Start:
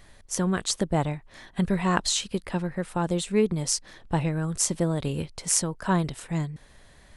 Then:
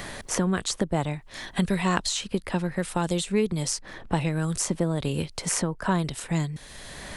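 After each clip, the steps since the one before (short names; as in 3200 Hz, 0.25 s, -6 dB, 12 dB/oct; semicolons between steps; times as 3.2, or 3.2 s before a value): three-band squash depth 70%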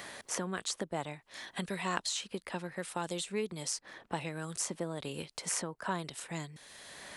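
HPF 430 Hz 6 dB/oct; gain -7 dB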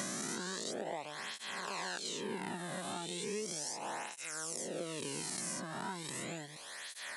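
spectral swells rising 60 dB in 2.39 s; compressor 6:1, threshold -38 dBFS, peak gain reduction 14.5 dB; tape flanging out of phase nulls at 0.36 Hz, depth 2.3 ms; gain +3.5 dB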